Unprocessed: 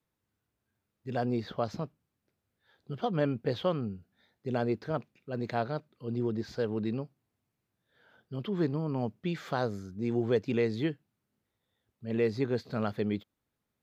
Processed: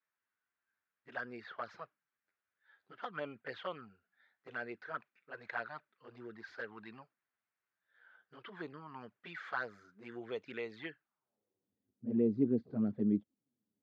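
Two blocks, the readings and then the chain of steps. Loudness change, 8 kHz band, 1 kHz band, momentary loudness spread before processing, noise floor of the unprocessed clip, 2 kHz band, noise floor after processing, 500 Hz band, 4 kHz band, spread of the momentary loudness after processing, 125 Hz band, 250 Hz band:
-6.5 dB, n/a, -8.0 dB, 11 LU, -84 dBFS, -0.5 dB, under -85 dBFS, -11.0 dB, -10.0 dB, 19 LU, -14.0 dB, -5.0 dB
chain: envelope flanger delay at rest 10.9 ms, full sweep at -24.5 dBFS; band-pass sweep 1600 Hz -> 250 Hz, 10.99–11.7; gain +5.5 dB

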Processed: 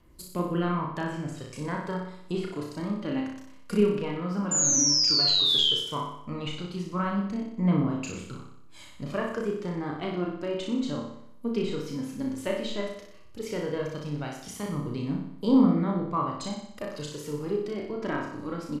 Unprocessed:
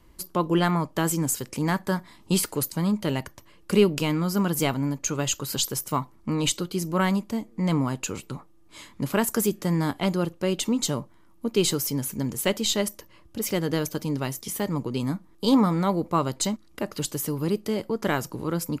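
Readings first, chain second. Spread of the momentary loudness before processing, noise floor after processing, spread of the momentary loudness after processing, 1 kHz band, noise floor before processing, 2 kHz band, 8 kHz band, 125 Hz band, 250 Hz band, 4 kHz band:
8 LU, -46 dBFS, 17 LU, -4.5 dB, -54 dBFS, -6.0 dB, 0.0 dB, -5.0 dB, -3.0 dB, +5.0 dB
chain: spectral repair 4.52–4.79, 240–3700 Hz both; treble ducked by the level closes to 2000 Hz, closed at -20 dBFS; notch 860 Hz, Q 19; phaser 0.13 Hz, delay 4.4 ms, feedback 43%; painted sound fall, 4.51–5.73, 3000–7200 Hz -18 dBFS; doubler 34 ms -3.5 dB; flutter echo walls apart 10.4 m, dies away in 0.71 s; gain -8 dB

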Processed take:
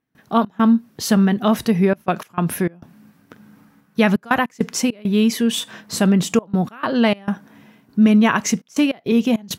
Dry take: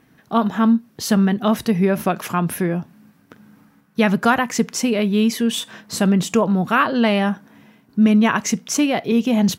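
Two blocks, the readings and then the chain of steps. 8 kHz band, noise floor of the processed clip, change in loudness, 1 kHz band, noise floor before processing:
-1.0 dB, -58 dBFS, 0.0 dB, -2.0 dB, -57 dBFS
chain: step gate ".xx.xxxxxxxxx.x" 101 bpm -24 dB; gain +1 dB

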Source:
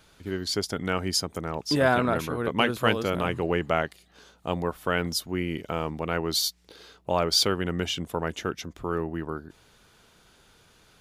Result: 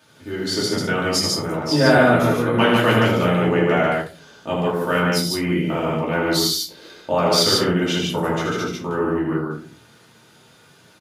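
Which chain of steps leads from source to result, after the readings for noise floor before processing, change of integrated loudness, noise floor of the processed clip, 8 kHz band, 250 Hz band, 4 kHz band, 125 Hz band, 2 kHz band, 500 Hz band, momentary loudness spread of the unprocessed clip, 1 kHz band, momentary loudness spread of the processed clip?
-59 dBFS, +8.0 dB, -52 dBFS, +6.5 dB, +10.0 dB, +6.5 dB, +9.0 dB, +8.5 dB, +8.5 dB, 11 LU, +7.5 dB, 10 LU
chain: HPF 100 Hz 24 dB/oct; on a send: loudspeakers at several distances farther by 27 m -5 dB, 50 m -2 dB; on the sum: shoebox room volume 180 m³, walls furnished, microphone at 2.6 m; gain -1 dB

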